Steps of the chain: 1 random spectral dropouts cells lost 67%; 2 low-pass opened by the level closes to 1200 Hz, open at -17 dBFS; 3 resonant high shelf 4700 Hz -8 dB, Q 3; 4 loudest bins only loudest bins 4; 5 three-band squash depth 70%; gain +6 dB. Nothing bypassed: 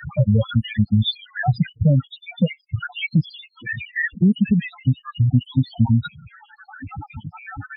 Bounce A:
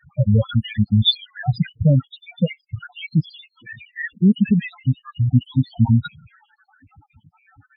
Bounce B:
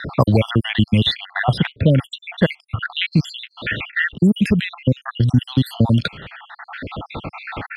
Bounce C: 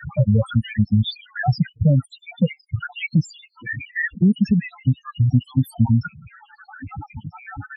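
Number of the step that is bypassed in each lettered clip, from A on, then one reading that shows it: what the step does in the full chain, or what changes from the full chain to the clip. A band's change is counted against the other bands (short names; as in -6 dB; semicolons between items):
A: 5, crest factor change +1.5 dB; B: 4, 125 Hz band -6.0 dB; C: 3, 4 kHz band -4.5 dB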